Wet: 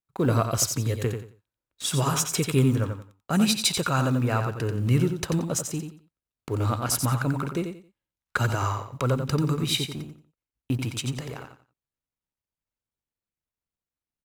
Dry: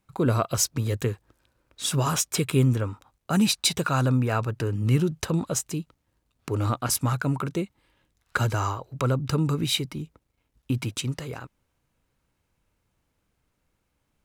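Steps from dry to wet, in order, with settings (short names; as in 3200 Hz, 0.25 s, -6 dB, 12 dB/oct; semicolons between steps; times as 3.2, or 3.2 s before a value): G.711 law mismatch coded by A; gate -48 dBFS, range -15 dB; feedback echo 89 ms, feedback 24%, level -7 dB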